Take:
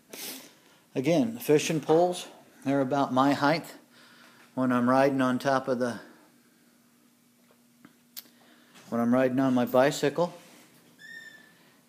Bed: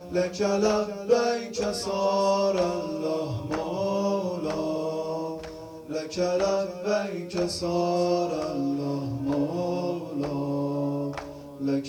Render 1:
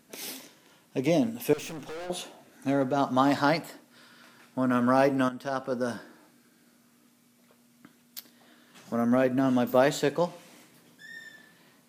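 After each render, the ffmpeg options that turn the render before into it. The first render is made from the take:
-filter_complex "[0:a]asettb=1/sr,asplit=3[s0][s1][s2];[s0]atrim=end=1.534[s3];[s1]atrim=start=1.53:end=2.1,asetpts=PTS-STARTPTS,afade=t=in:d=0.004:c=qsin,afade=t=out:st=0.566:d=0.004:c=qsin,aeval=exprs='(tanh(70.8*val(0)+0.2)-tanh(0.2))/70.8':c=same[s4];[s2]atrim=start=2.096[s5];[s3][s4]acrossfade=d=0.004:c1=hsin:c2=qsin[s6];[s6][s5]acrossfade=d=0.004:c1=qsin:c2=hsin,asplit=2[s7][s8];[s7]atrim=end=5.29,asetpts=PTS-STARTPTS,afade=t=out:st=5.286:d=0.004:c=hsin:silence=0.211349[s9];[s8]atrim=start=5.29,asetpts=PTS-STARTPTS,afade=t=in:d=0.65:silence=0.211349[s10];[s9][s10]concat=n=2:v=0:a=1"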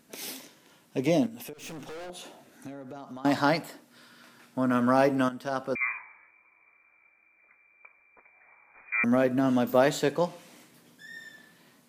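-filter_complex "[0:a]asettb=1/sr,asplit=3[s0][s1][s2];[s0]atrim=end=1.264[s3];[s1]atrim=start=1.26:end=3.25,asetpts=PTS-STARTPTS,afade=t=in:d=0.004:c=qsin,afade=t=out:st=1.986:d=0.004:c=qsin,acompressor=threshold=0.0126:ratio=10:attack=3.2:release=140:knee=1:detection=peak[s4];[s2]atrim=start=3.246[s5];[s3][s4]acrossfade=d=0.004:c1=hsin:c2=qsin[s6];[s6][s5]acrossfade=d=0.004:c1=qsin:c2=hsin,asettb=1/sr,asplit=3[s7][s8][s9];[s7]atrim=end=5.754[s10];[s8]atrim=start=5.75:end=9.04,asetpts=PTS-STARTPTS,afade=t=in:d=0.004:c=qsin,afade=t=out:st=3.286:d=0.004:c=qsin,lowpass=f=2200:t=q:w=0.5098,lowpass=f=2200:t=q:w=0.6013,lowpass=f=2200:t=q:w=0.9,lowpass=f=2200:t=q:w=2.563,afreqshift=-2600[s11];[s9]atrim=start=9.036[s12];[s10][s11]acrossfade=d=0.004:c1=hsin:c2=qsin[s13];[s13][s12]acrossfade=d=0.004:c1=qsin:c2=hsin"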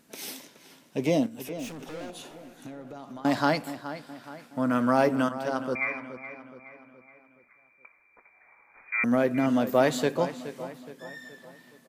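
-filter_complex "[0:a]asplit=2[s0][s1];[s1]adelay=421,lowpass=f=4200:p=1,volume=0.237,asplit=2[s2][s3];[s3]adelay=421,lowpass=f=4200:p=1,volume=0.48,asplit=2[s4][s5];[s5]adelay=421,lowpass=f=4200:p=1,volume=0.48,asplit=2[s6][s7];[s7]adelay=421,lowpass=f=4200:p=1,volume=0.48,asplit=2[s8][s9];[s9]adelay=421,lowpass=f=4200:p=1,volume=0.48[s10];[s0][s2][s4][s6][s8][s10]amix=inputs=6:normalize=0"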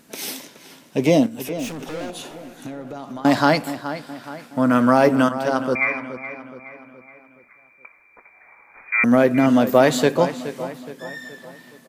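-af "volume=2.66,alimiter=limit=0.708:level=0:latency=1"

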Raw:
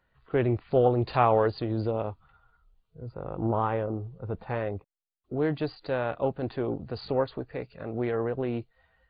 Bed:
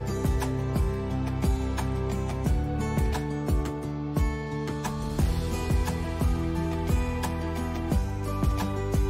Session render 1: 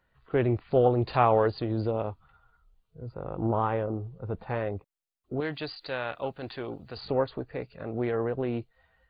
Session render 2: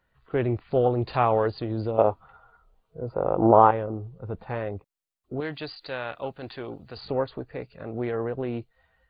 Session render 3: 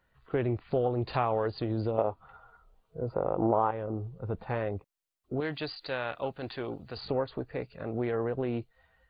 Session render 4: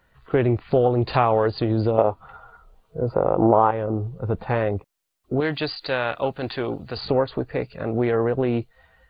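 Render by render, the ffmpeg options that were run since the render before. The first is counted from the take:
-filter_complex "[0:a]asettb=1/sr,asplit=3[s0][s1][s2];[s0]atrim=end=5.404[s3];[s1]atrim=start=5.4:end=6.97,asetpts=PTS-STARTPTS,afade=t=in:d=0.004:c=qsin,afade=t=out:st=1.566:d=0.004:c=qsin,tiltshelf=f=1300:g=-8[s4];[s2]atrim=start=6.966[s5];[s3][s4]acrossfade=d=0.004:c1=hsin:c2=qsin[s6];[s6][s5]acrossfade=d=0.004:c1=qsin:c2=hsin"
-filter_complex "[0:a]asettb=1/sr,asplit=3[s0][s1][s2];[s0]atrim=end=1.984[s3];[s1]atrim=start=1.98:end=3.71,asetpts=PTS-STARTPTS,afade=t=in:d=0.004:c=qsin,afade=t=out:st=1.726:d=0.004:c=qsin,equalizer=f=640:t=o:w=2.8:g=14[s4];[s2]atrim=start=3.706[s5];[s3][s4]acrossfade=d=0.004:c1=hsin:c2=qsin[s6];[s6][s5]acrossfade=d=0.004:c1=qsin:c2=hsin"
-af "acompressor=threshold=0.0447:ratio=2.5"
-af "volume=2.99"

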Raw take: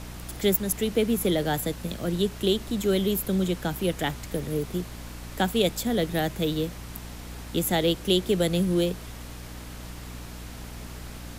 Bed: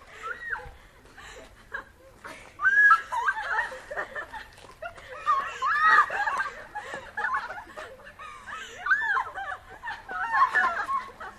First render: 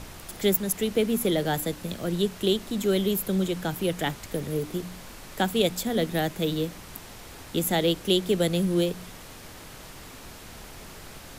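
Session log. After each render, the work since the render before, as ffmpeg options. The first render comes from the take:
-af "bandreject=f=60:t=h:w=4,bandreject=f=120:t=h:w=4,bandreject=f=180:t=h:w=4,bandreject=f=240:t=h:w=4,bandreject=f=300:t=h:w=4"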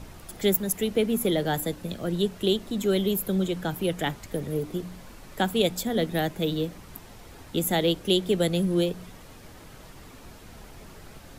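-af "afftdn=nr=7:nf=-44"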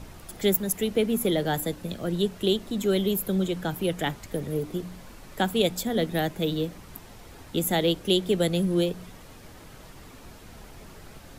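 -af anull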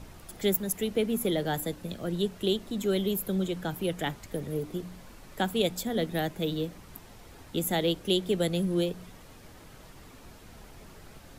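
-af "volume=0.668"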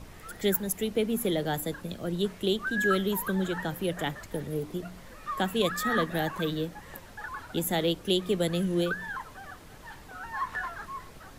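-filter_complex "[1:a]volume=0.282[s0];[0:a][s0]amix=inputs=2:normalize=0"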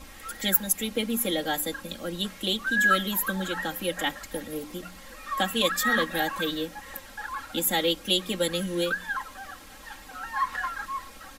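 -af "tiltshelf=f=920:g=-4.5,aecho=1:1:3.7:0.94"

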